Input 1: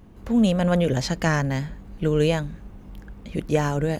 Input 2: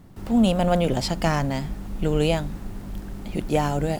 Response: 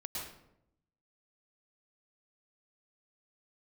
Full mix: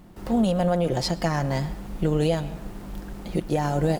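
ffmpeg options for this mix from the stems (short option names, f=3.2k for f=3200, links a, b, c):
-filter_complex "[0:a]aecho=1:1:5.7:0.97,volume=-4.5dB[a];[1:a]bass=f=250:g=-8,treble=f=4k:g=-1,volume=1dB,asplit=2[b][c];[c]volume=-15dB[d];[2:a]atrim=start_sample=2205[e];[d][e]afir=irnorm=-1:irlink=0[f];[a][b][f]amix=inputs=3:normalize=0,tremolo=f=180:d=0.261,alimiter=limit=-13dB:level=0:latency=1:release=373"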